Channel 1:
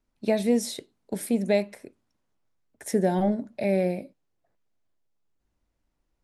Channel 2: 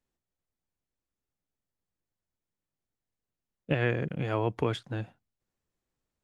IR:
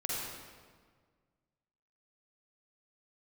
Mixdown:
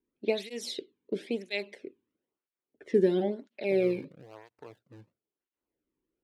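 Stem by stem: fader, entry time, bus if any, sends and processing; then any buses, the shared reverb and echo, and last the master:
-3.5 dB, 0.00 s, no send, level-controlled noise filter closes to 1.4 kHz, open at -22.5 dBFS; FFT filter 120 Hz 0 dB, 390 Hz +10 dB, 660 Hz -5 dB, 1.6 kHz 0 dB, 3.1 kHz +11 dB, 8.7 kHz -6 dB
-11.5 dB, 0.00 s, no send, median filter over 41 samples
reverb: none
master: peaking EQ 220 Hz -4 dB 1.2 oct; cancelling through-zero flanger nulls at 1 Hz, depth 1.6 ms

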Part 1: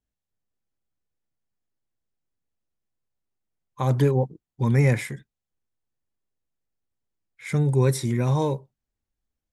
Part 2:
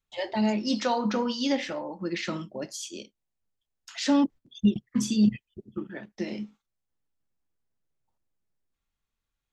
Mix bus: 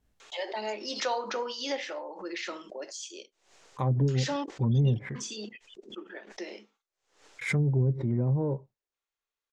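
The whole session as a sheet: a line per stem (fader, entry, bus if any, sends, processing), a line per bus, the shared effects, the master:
-3.5 dB, 0.00 s, no send, low-pass that closes with the level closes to 300 Hz, closed at -17 dBFS; treble shelf 3 kHz -7 dB; gate with hold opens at -43 dBFS
-2.5 dB, 0.20 s, no send, Chebyshev band-pass 390–7000 Hz, order 3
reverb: none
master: saturation -13 dBFS, distortion -29 dB; swell ahead of each attack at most 110 dB/s

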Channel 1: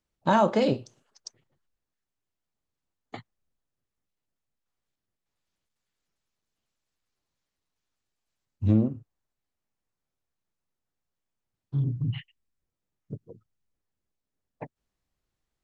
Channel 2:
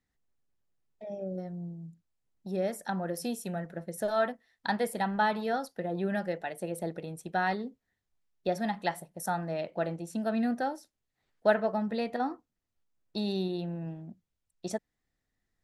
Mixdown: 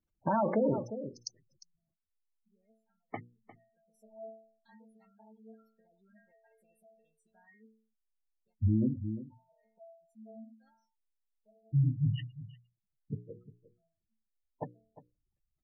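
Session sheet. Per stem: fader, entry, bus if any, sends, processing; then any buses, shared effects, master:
+1.0 dB, 0.00 s, no send, echo send -16.5 dB, hum notches 60/120/180/240/300/360/420/480/540 Hz
-13.0 dB, 0.00 s, no send, no echo send, inharmonic resonator 220 Hz, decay 0.57 s, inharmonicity 0.002; auto duck -16 dB, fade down 0.80 s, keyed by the first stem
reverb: none
echo: delay 353 ms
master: spectral gate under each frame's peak -15 dB strong; peak limiter -20.5 dBFS, peak gain reduction 10 dB

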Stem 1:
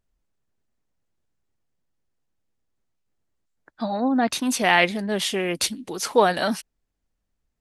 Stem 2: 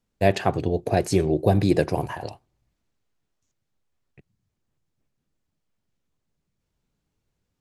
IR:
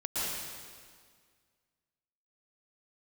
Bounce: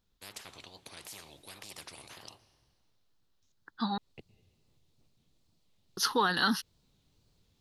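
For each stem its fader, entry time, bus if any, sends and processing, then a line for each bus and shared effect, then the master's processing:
+3.0 dB, 0.00 s, muted 3.98–5.97 s, no send, bass shelf 500 Hz -6.5 dB; peak limiter -14.5 dBFS, peak gain reduction 10 dB; static phaser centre 2.3 kHz, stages 6
3.73 s -23.5 dB -> 4.19 s -15.5 dB, 0.00 s, send -24 dB, fifteen-band graphic EQ 100 Hz +3 dB, 1.6 kHz -7 dB, 4 kHz +10 dB; wow and flutter 130 cents; spectrum-flattening compressor 10:1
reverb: on, RT60 1.8 s, pre-delay 107 ms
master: none

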